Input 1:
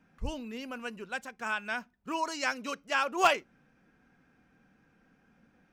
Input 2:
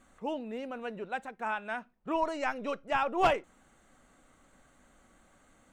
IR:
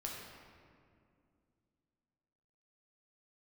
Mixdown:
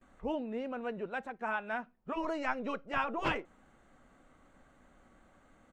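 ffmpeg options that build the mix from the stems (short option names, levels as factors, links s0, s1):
-filter_complex "[0:a]volume=0.15[s0];[1:a]adelay=13,volume=1.12[s1];[s0][s1]amix=inputs=2:normalize=0,lowpass=f=2100:p=1,afftfilt=real='re*lt(hypot(re,im),0.251)':imag='im*lt(hypot(re,im),0.251)':win_size=1024:overlap=0.75"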